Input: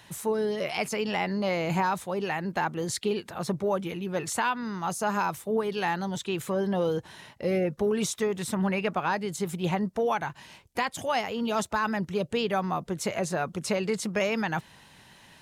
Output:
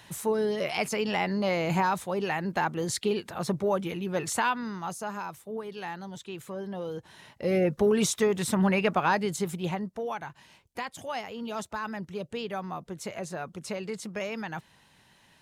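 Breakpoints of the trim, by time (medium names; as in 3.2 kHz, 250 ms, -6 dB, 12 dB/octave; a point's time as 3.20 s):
4.54 s +0.5 dB
5.18 s -9 dB
6.87 s -9 dB
7.68 s +3 dB
9.25 s +3 dB
9.94 s -7 dB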